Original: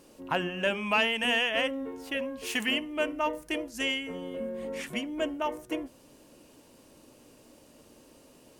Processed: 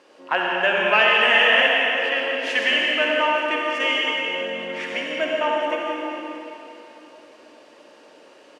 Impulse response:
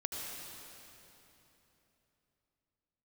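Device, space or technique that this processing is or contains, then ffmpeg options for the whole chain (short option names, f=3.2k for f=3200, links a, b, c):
station announcement: -filter_complex "[0:a]highpass=500,lowpass=3.8k,equalizer=f=1.7k:t=o:w=0.53:g=4.5,aecho=1:1:61.22|172:0.316|0.282[a];[1:a]atrim=start_sample=2205[b];[a][b]afir=irnorm=-1:irlink=0,volume=8.5dB"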